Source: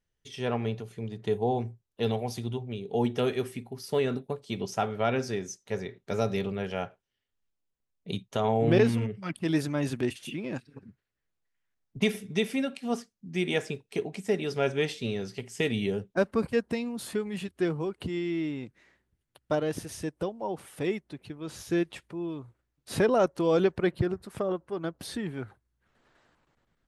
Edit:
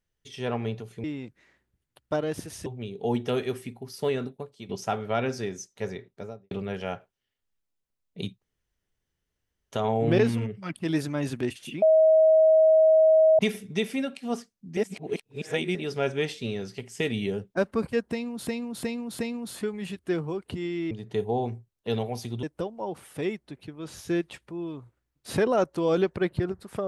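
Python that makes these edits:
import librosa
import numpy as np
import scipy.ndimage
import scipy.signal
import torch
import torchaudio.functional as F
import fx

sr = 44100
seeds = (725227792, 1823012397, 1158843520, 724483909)

y = fx.studio_fade_out(x, sr, start_s=5.81, length_s=0.6)
y = fx.edit(y, sr, fx.swap(start_s=1.04, length_s=1.52, other_s=18.43, other_length_s=1.62),
    fx.fade_out_to(start_s=3.97, length_s=0.62, floor_db=-10.5),
    fx.insert_room_tone(at_s=8.32, length_s=1.3),
    fx.bleep(start_s=10.42, length_s=1.57, hz=635.0, db=-14.5),
    fx.reverse_span(start_s=13.37, length_s=0.98),
    fx.repeat(start_s=16.71, length_s=0.36, count=4), tone=tone)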